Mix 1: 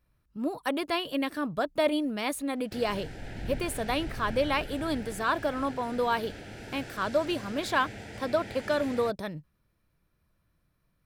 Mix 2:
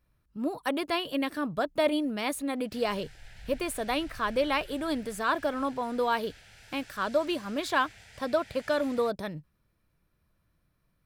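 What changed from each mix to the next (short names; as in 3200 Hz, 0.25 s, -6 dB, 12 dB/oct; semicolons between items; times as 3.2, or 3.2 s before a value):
background: add passive tone stack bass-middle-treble 10-0-10; reverb: off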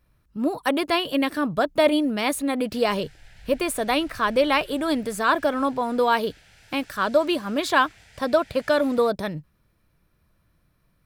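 speech +7.0 dB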